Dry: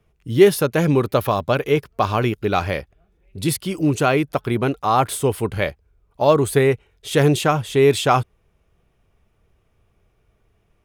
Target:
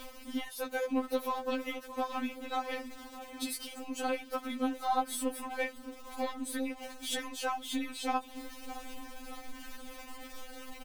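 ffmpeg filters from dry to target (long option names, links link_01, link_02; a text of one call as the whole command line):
ffmpeg -i in.wav -filter_complex "[0:a]aeval=exprs='val(0)+0.5*0.0473*sgn(val(0))':channel_layout=same,acompressor=threshold=-22dB:ratio=6,aeval=exprs='0.282*(cos(1*acos(clip(val(0)/0.282,-1,1)))-cos(1*PI/2))+0.00178*(cos(4*acos(clip(val(0)/0.282,-1,1)))-cos(4*PI/2))+0.00794*(cos(6*acos(clip(val(0)/0.282,-1,1)))-cos(6*PI/2))+0.0178*(cos(7*acos(clip(val(0)/0.282,-1,1)))-cos(7*PI/2))+0.00282*(cos(8*acos(clip(val(0)/0.282,-1,1)))-cos(8*PI/2))':channel_layout=same,asplit=2[link_01][link_02];[link_02]adelay=617,lowpass=frequency=1500:poles=1,volume=-12.5dB,asplit=2[link_03][link_04];[link_04]adelay=617,lowpass=frequency=1500:poles=1,volume=0.54,asplit=2[link_05][link_06];[link_06]adelay=617,lowpass=frequency=1500:poles=1,volume=0.54,asplit=2[link_07][link_08];[link_08]adelay=617,lowpass=frequency=1500:poles=1,volume=0.54,asplit=2[link_09][link_10];[link_10]adelay=617,lowpass=frequency=1500:poles=1,volume=0.54,asplit=2[link_11][link_12];[link_12]adelay=617,lowpass=frequency=1500:poles=1,volume=0.54[link_13];[link_03][link_05][link_07][link_09][link_11][link_13]amix=inputs=6:normalize=0[link_14];[link_01][link_14]amix=inputs=2:normalize=0,afftfilt=real='re*3.46*eq(mod(b,12),0)':imag='im*3.46*eq(mod(b,12),0)':win_size=2048:overlap=0.75,volume=-4.5dB" out.wav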